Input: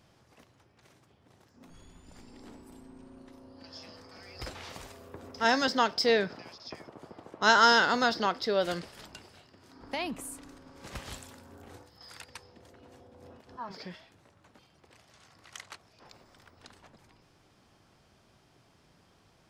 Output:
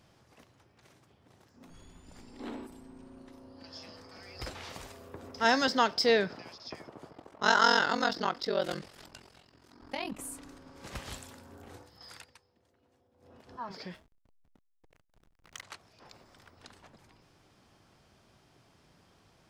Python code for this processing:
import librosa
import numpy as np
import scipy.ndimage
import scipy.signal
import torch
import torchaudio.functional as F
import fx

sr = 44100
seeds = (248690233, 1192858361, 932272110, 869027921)

y = fx.spec_box(x, sr, start_s=2.4, length_s=0.27, low_hz=210.0, high_hz=4300.0, gain_db=10)
y = fx.ring_mod(y, sr, carrier_hz=22.0, at=(7.09, 10.2))
y = fx.backlash(y, sr, play_db=-45.0, at=(13.94, 15.63))
y = fx.edit(y, sr, fx.fade_down_up(start_s=12.13, length_s=1.29, db=-16.0, fade_s=0.33, curve='qua'), tone=tone)